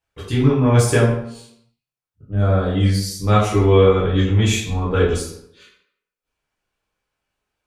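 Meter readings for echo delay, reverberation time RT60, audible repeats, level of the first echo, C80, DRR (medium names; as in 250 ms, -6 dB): no echo, 0.75 s, no echo, no echo, 6.0 dB, -9.0 dB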